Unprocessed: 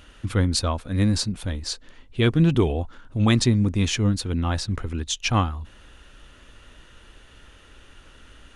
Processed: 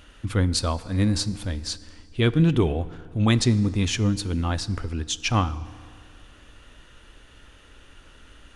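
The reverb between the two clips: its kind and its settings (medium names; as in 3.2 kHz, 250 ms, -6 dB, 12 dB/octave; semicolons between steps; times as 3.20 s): FDN reverb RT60 2.2 s, low-frequency decay 0.95×, high-frequency decay 0.7×, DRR 15.5 dB; trim -1 dB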